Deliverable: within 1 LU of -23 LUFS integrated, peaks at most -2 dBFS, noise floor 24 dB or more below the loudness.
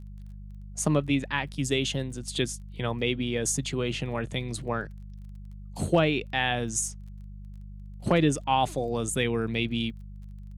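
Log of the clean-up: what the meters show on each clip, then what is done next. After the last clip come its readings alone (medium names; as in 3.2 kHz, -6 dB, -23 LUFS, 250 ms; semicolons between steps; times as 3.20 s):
tick rate 20 per s; hum 50 Hz; highest harmonic 200 Hz; hum level -39 dBFS; loudness -28.0 LUFS; peak level -10.5 dBFS; loudness target -23.0 LUFS
-> de-click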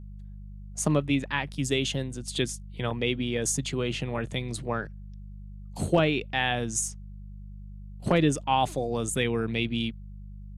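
tick rate 0 per s; hum 50 Hz; highest harmonic 200 Hz; hum level -39 dBFS
-> de-hum 50 Hz, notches 4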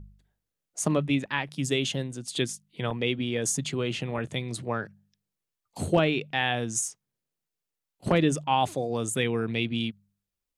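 hum not found; loudness -28.0 LUFS; peak level -10.5 dBFS; loudness target -23.0 LUFS
-> trim +5 dB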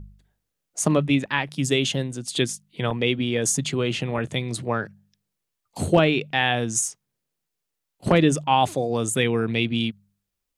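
loudness -23.5 LUFS; peak level -5.5 dBFS; noise floor -82 dBFS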